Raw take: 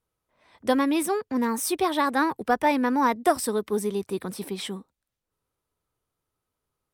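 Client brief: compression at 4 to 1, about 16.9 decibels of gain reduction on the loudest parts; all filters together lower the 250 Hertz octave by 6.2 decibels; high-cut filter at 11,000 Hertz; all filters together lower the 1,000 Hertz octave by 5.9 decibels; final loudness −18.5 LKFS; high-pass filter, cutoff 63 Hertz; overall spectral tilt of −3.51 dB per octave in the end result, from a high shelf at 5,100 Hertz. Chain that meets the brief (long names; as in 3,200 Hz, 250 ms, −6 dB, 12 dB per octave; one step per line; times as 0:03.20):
high-pass filter 63 Hz
low-pass filter 11,000 Hz
parametric band 250 Hz −7 dB
parametric band 1,000 Hz −7 dB
high-shelf EQ 5,100 Hz −6 dB
downward compressor 4 to 1, threshold −42 dBFS
level +25 dB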